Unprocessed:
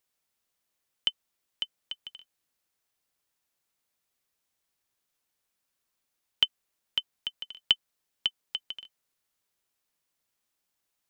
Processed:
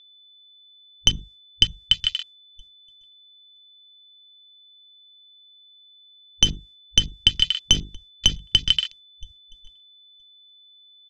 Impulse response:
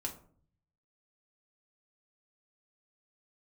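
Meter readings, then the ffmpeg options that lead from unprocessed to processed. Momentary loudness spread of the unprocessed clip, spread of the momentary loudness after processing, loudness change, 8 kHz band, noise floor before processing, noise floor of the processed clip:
15 LU, 7 LU, +11.0 dB, can't be measured, −82 dBFS, −53 dBFS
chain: -filter_complex "[0:a]aeval=exprs='clip(val(0),-1,0.0299)':channel_layout=same,aecho=1:1:969|1938:0.0794|0.0151,acrossover=split=160[link_01][link_02];[link_01]acompressor=threshold=-34dB:ratio=6[link_03];[link_03][link_02]amix=inputs=2:normalize=0,bass=frequency=250:gain=6,treble=frequency=4000:gain=10,bandreject=frequency=50:width_type=h:width=6,bandreject=frequency=100:width_type=h:width=6,bandreject=frequency=150:width_type=h:width=6,bandreject=frequency=200:width_type=h:width=6,bandreject=frequency=250:width_type=h:width=6,bandreject=frequency=300:width_type=h:width=6,bandreject=frequency=350:width_type=h:width=6,bandreject=frequency=400:width_type=h:width=6,bandreject=frequency=450:width_type=h:width=6,agate=range=-33dB:threshold=-54dB:ratio=3:detection=peak,aeval=exprs='val(0)+0.00282*sin(2*PI*3500*n/s)':channel_layout=same,lowpass=5100,asplit=2[link_04][link_05];[link_05]equalizer=frequency=270:width=2.9:gain=-8[link_06];[1:a]atrim=start_sample=2205,afade=type=out:start_time=0.17:duration=0.01,atrim=end_sample=7938[link_07];[link_06][link_07]afir=irnorm=-1:irlink=0,volume=-11.5dB[link_08];[link_04][link_08]amix=inputs=2:normalize=0,afwtdn=0.00447,alimiter=level_in=19dB:limit=-1dB:release=50:level=0:latency=1,volume=-1dB"

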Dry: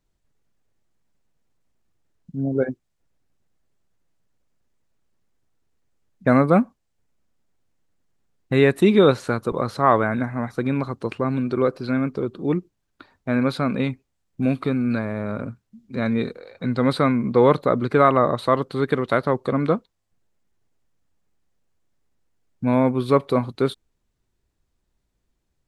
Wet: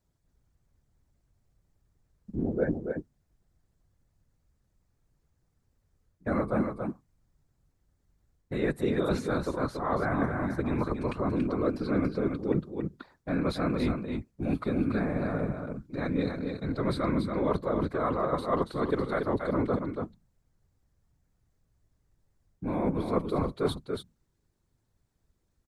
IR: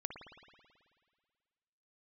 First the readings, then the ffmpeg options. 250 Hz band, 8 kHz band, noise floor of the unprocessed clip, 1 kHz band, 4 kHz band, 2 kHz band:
−7.5 dB, can't be measured, −74 dBFS, −10.0 dB, −9.0 dB, −9.0 dB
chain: -af "equalizer=frequency=2800:width=1.9:gain=-5.5,bandreject=frequency=50:width_type=h:width=6,bandreject=frequency=100:width_type=h:width=6,bandreject=frequency=150:width_type=h:width=6,areverse,acompressor=threshold=-23dB:ratio=12,areverse,afftfilt=real='hypot(re,im)*cos(2*PI*random(0))':imag='hypot(re,im)*sin(2*PI*random(1))':win_size=512:overlap=0.75,aecho=1:1:282:0.531,volume=4.5dB"

